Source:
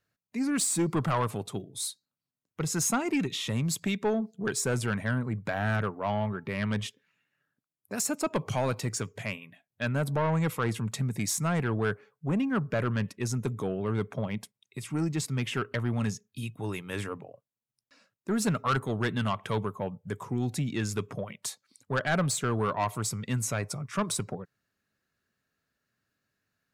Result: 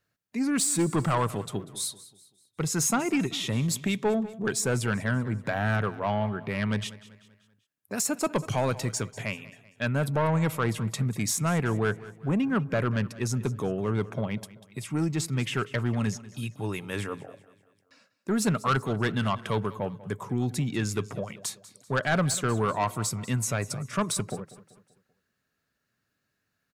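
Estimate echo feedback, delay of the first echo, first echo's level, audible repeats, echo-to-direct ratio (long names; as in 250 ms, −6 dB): 44%, 193 ms, −18.0 dB, 3, −17.0 dB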